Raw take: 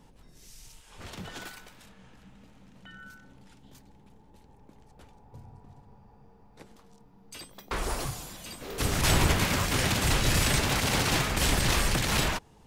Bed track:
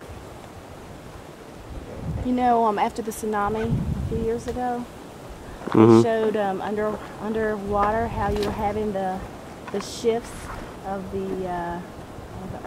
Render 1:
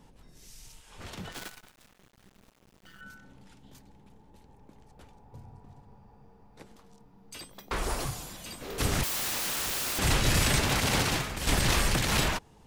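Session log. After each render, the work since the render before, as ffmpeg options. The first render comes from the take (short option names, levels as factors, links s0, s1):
-filter_complex "[0:a]asettb=1/sr,asplit=3[s0][s1][s2];[s0]atrim=end=1.324[s3];[s1]atrim=start=1.32:end=3.01,asetpts=PTS-STARTPTS,afade=t=in:d=0.004:c=qsin,afade=t=out:st=1.686:d=0.004:c=qsin,acrusher=bits=7:dc=4:mix=0:aa=0.000001[s4];[s2]atrim=start=3.006[s5];[s3][s4]acrossfade=d=0.004:c1=hsin:c2=qsin[s6];[s6][s5]acrossfade=d=0.004:c1=qsin:c2=hsin,asettb=1/sr,asplit=3[s7][s8][s9];[s7]atrim=end=9.034[s10];[s8]atrim=start=9.03:end=9.99,asetpts=PTS-STARTPTS,afade=t=in:d=0.004:c=qsin,afade=t=out:st=0.956:d=0.004:c=qsin,aeval=exprs='(mod(22.4*val(0)+1,2)-1)/22.4':c=same[s11];[s9]atrim=start=9.986[s12];[s10][s11]acrossfade=d=0.004:c1=hsin:c2=qsin[s13];[s13][s12]acrossfade=d=0.004:c1=qsin:c2=hsin,asplit=2[s14][s15];[s14]atrim=end=11.47,asetpts=PTS-STARTPTS,afade=t=out:st=11.02:d=0.45:c=qua:silence=0.375837[s16];[s15]atrim=start=11.47,asetpts=PTS-STARTPTS,afade=t=in:d=0.004:c=hsin:silence=0.375837[s17];[s16][s17]concat=n=2:v=0:a=1"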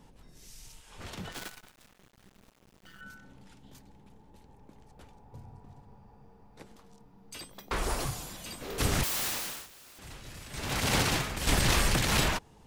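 -filter_complex "[0:a]asplit=3[s0][s1][s2];[s0]atrim=end=9.68,asetpts=PTS-STARTPTS,afade=t=out:st=9.25:d=0.43:silence=0.0841395[s3];[s1]atrim=start=9.68:end=10.51,asetpts=PTS-STARTPTS,volume=0.0841[s4];[s2]atrim=start=10.51,asetpts=PTS-STARTPTS,afade=t=in:d=0.43:silence=0.0841395[s5];[s3][s4][s5]concat=n=3:v=0:a=1"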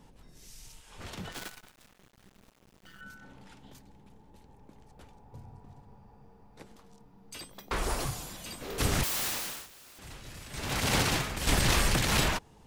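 -filter_complex "[0:a]asettb=1/sr,asplit=3[s0][s1][s2];[s0]atrim=end=3.214[s3];[s1]atrim=start=3.21:end=3.73,asetpts=PTS-STARTPTS,afade=t=in:d=0.004:c=qsin,afade=t=out:st=0.516:d=0.004:c=qsin,equalizer=f=1300:w=0.32:g=5.5[s4];[s2]atrim=start=3.726[s5];[s3][s4]acrossfade=d=0.004:c1=hsin:c2=qsin[s6];[s6][s5]acrossfade=d=0.004:c1=qsin:c2=hsin"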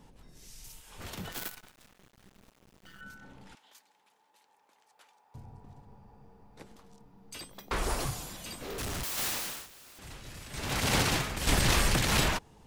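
-filter_complex "[0:a]asettb=1/sr,asplit=3[s0][s1][s2];[s0]atrim=end=0.644[s3];[s1]atrim=start=0.64:end=1.55,asetpts=PTS-STARTPTS,afade=t=in:d=0.004:c=qsin,afade=t=out:st=0.906:d=0.004:c=qsin,equalizer=f=15000:w=0.82:g=13[s4];[s2]atrim=start=1.546[s5];[s3][s4]acrossfade=d=0.004:c1=hsin:c2=qsin[s6];[s6][s5]acrossfade=d=0.004:c1=qsin:c2=hsin,asettb=1/sr,asplit=3[s7][s8][s9];[s7]atrim=end=3.554[s10];[s8]atrim=start=3.55:end=5.35,asetpts=PTS-STARTPTS,afade=t=in:d=0.004:c=qsin,afade=t=out:st=1.796:d=0.004:c=qsin,highpass=1000[s11];[s9]atrim=start=5.346[s12];[s10][s11]acrossfade=d=0.004:c1=hsin:c2=qsin[s13];[s13][s12]acrossfade=d=0.004:c1=qsin:c2=hsin,asettb=1/sr,asplit=3[s14][s15][s16];[s14]atrim=end=8.564[s17];[s15]atrim=start=8.56:end=9.18,asetpts=PTS-STARTPTS,afade=t=in:d=0.004:c=qsin,afade=t=out:st=0.616:d=0.004:c=qsin,volume=50.1,asoftclip=hard,volume=0.02[s18];[s16]atrim=start=9.176[s19];[s17][s18]acrossfade=d=0.004:c1=hsin:c2=qsin[s20];[s20][s19]acrossfade=d=0.004:c1=qsin:c2=hsin"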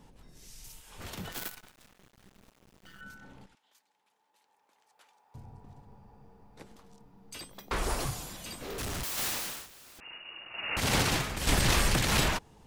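-filter_complex "[0:a]asettb=1/sr,asplit=3[s0][s1][s2];[s0]atrim=end=10.004[s3];[s1]atrim=start=10:end=10.77,asetpts=PTS-STARTPTS,afade=t=in:d=0.004:c=qsin,afade=t=out:st=0.766:d=0.004:c=qsin,lowpass=f=2500:t=q:w=0.5098,lowpass=f=2500:t=q:w=0.6013,lowpass=f=2500:t=q:w=0.9,lowpass=f=2500:t=q:w=2.563,afreqshift=-2900[s4];[s2]atrim=start=10.766[s5];[s3][s4]acrossfade=d=0.004:c1=hsin:c2=qsin[s6];[s6][s5]acrossfade=d=0.004:c1=qsin:c2=hsin,asplit=2[s7][s8];[s7]atrim=end=3.46,asetpts=PTS-STARTPTS,afade=t=out:st=3.456:d=0.004:c=hsin:silence=0.251189[s9];[s8]atrim=start=3.46,asetpts=PTS-STARTPTS,afade=t=in:d=1.98:silence=0.251189[s10];[s9][s10]concat=n=2:v=0:a=1"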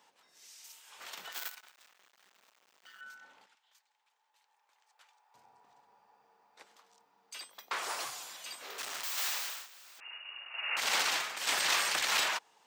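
-af "highpass=880,equalizer=f=11000:w=2.6:g=-11.5"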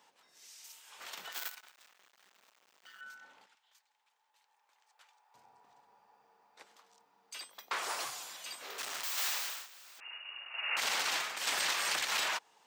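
-af "alimiter=limit=0.0841:level=0:latency=1:release=186"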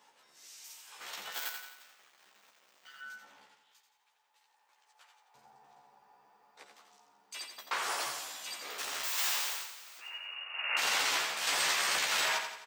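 -filter_complex "[0:a]asplit=2[s0][s1];[s1]adelay=14,volume=0.708[s2];[s0][s2]amix=inputs=2:normalize=0,aecho=1:1:86|172|258|344|430|516:0.447|0.219|0.107|0.0526|0.0258|0.0126"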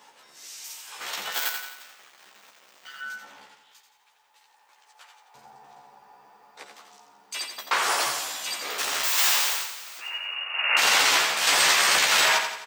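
-af "volume=3.35"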